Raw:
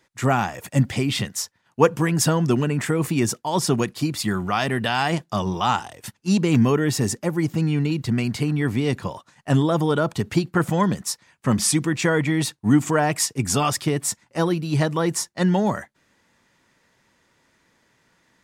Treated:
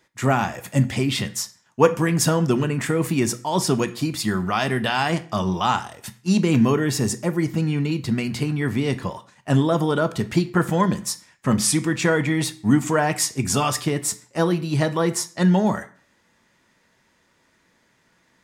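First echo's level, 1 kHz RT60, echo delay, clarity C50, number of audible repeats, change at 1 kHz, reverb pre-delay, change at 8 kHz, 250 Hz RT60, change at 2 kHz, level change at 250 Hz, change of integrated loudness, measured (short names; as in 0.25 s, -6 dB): none, 0.45 s, none, 16.5 dB, none, 0.0 dB, 3 ms, 0.0 dB, 0.50 s, +0.5 dB, +0.5 dB, +0.5 dB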